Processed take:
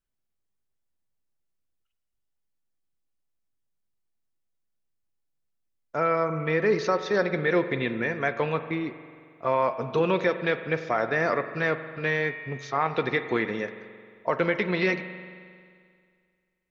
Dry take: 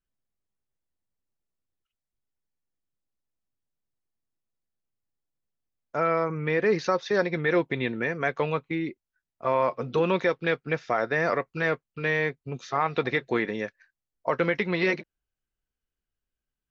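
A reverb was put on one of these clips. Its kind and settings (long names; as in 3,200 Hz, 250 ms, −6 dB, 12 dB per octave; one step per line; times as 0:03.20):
spring reverb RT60 2.1 s, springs 44 ms, chirp 55 ms, DRR 10 dB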